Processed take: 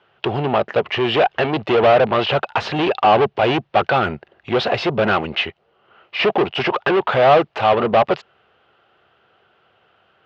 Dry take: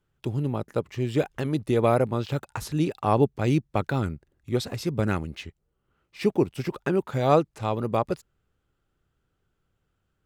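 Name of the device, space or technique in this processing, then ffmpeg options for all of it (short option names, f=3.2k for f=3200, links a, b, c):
overdrive pedal into a guitar cabinet: -filter_complex "[0:a]asplit=2[a][b];[b]highpass=f=720:p=1,volume=32dB,asoftclip=type=tanh:threshold=-6.5dB[c];[a][c]amix=inputs=2:normalize=0,lowpass=f=1.7k:p=1,volume=-6dB,highpass=99,equalizer=f=120:t=q:w=4:g=-4,equalizer=f=170:t=q:w=4:g=-7,equalizer=f=280:t=q:w=4:g=-10,equalizer=f=700:t=q:w=4:g=7,equalizer=f=2.9k:t=q:w=4:g=7,lowpass=f=4.4k:w=0.5412,lowpass=f=4.4k:w=1.3066"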